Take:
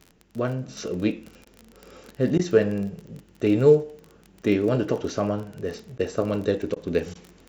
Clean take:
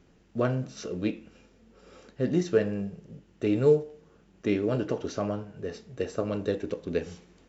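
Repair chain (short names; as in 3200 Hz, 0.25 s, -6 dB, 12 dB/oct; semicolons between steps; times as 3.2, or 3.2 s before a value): de-click; interpolate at 1.45/2.38/5.98/6.75/7.14, 11 ms; gain correction -5 dB, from 0.68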